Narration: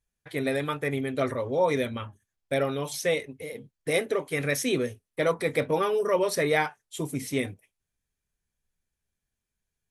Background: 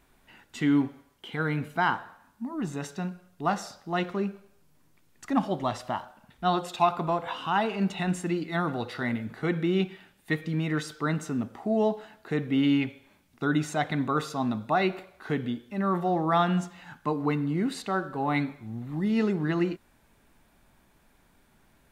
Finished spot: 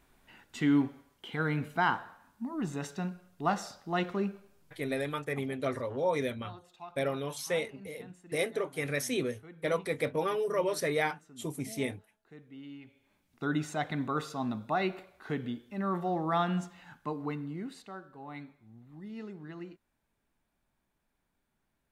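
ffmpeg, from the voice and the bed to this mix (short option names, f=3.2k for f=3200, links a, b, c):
-filter_complex "[0:a]adelay=4450,volume=-5.5dB[a];[1:a]volume=15.5dB,afade=t=out:st=4.87:d=0.41:silence=0.0891251,afade=t=in:st=12.83:d=0.64:silence=0.125893,afade=t=out:st=16.73:d=1.28:silence=0.251189[b];[a][b]amix=inputs=2:normalize=0"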